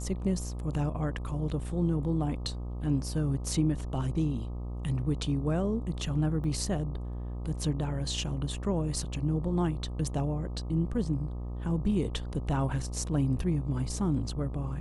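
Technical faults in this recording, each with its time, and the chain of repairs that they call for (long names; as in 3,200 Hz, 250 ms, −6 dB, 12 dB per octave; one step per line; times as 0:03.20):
mains buzz 60 Hz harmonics 21 −36 dBFS
0:06.44: drop-out 2.3 ms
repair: hum removal 60 Hz, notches 21
repair the gap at 0:06.44, 2.3 ms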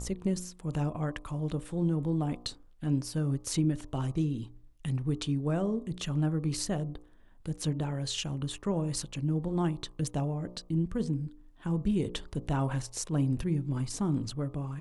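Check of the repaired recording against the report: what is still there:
none of them is left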